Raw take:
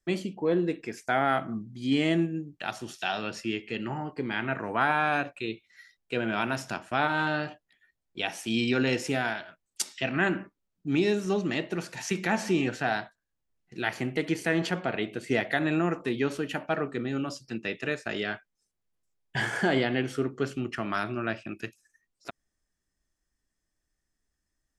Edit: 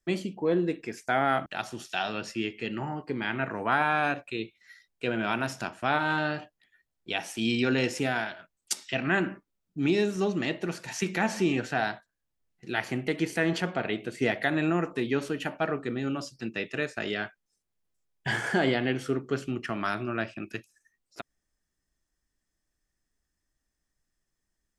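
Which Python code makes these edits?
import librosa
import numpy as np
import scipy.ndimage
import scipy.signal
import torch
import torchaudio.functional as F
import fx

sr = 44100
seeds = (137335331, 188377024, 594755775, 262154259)

y = fx.edit(x, sr, fx.cut(start_s=1.46, length_s=1.09), tone=tone)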